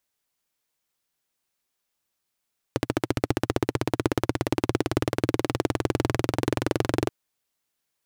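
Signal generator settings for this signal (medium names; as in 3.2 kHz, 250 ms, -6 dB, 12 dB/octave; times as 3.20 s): single-cylinder engine model, changing speed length 4.33 s, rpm 1700, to 2700, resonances 120/310 Hz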